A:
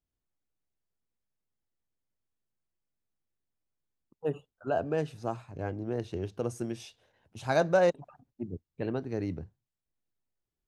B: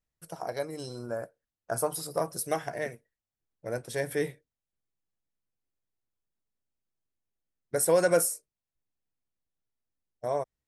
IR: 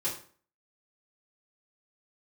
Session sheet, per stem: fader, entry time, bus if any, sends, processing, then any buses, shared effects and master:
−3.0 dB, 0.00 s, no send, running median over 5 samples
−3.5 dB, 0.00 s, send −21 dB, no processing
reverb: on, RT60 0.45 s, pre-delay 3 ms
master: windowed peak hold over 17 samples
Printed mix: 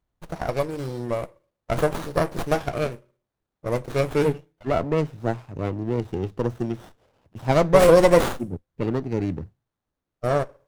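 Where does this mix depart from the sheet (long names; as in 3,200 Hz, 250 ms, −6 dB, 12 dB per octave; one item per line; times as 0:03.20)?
stem A −3.0 dB → +7.5 dB
stem B −3.5 dB → +8.0 dB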